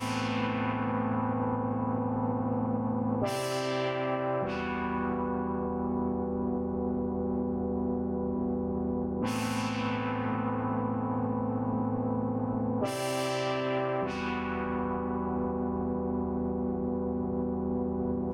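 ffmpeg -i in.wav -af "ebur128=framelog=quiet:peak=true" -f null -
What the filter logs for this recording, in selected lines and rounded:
Integrated loudness:
  I:         -31.3 LUFS
  Threshold: -41.3 LUFS
Loudness range:
  LRA:         1.1 LU
  Threshold: -51.3 LUFS
  LRA low:   -31.8 LUFS
  LRA high:  -30.6 LUFS
True peak:
  Peak:      -17.4 dBFS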